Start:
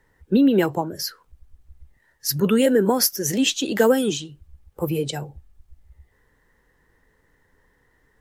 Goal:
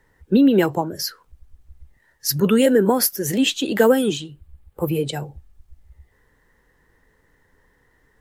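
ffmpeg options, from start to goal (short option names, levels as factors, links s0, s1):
-filter_complex "[0:a]asettb=1/sr,asplit=3[s0][s1][s2];[s0]atrim=end=2.784[s3];[s1]atrim=start=2.78:end=5.17,asetpts=PTS-STARTPTS,afade=t=in:d=0.004:c=qsin,afade=t=out:st=2.386:d=0.004:c=qsin,equalizer=f=5800:t=o:w=0.58:g=-8[s4];[s2]atrim=start=5.166[s5];[s3][s4]acrossfade=d=0.004:c1=hsin:c2=qsin[s6];[s6][s5]acrossfade=d=0.004:c1=qsin:c2=hsin,volume=1.26"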